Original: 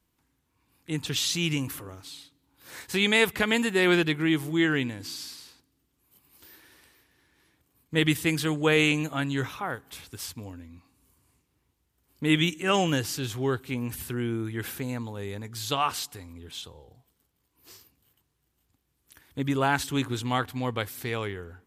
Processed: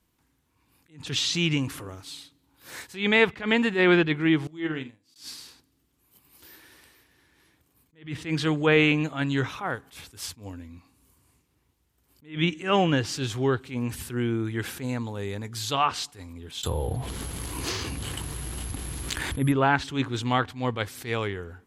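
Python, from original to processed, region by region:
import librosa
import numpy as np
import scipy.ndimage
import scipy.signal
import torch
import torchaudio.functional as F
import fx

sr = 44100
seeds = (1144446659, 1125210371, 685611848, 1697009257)

y = fx.chain(x, sr, fx.peak_eq(hz=1600.0, db=-6.5, octaves=0.21),
    fx.room_flutter(wall_m=7.7, rt60_s=0.29),
    fx.upward_expand(threshold_db=-40.0, expansion=2.5), at=(4.47, 5.16))
y = fx.chain(y, sr, fx.low_shelf(hz=71.0, db=8.5),
    fx.resample_bad(factor=4, down='filtered', up='zero_stuff'),
    fx.env_flatten(amount_pct=70), at=(16.63, 19.52))
y = fx.env_lowpass_down(y, sr, base_hz=2900.0, full_db=-20.0)
y = fx.attack_slew(y, sr, db_per_s=170.0)
y = y * librosa.db_to_amplitude(3.0)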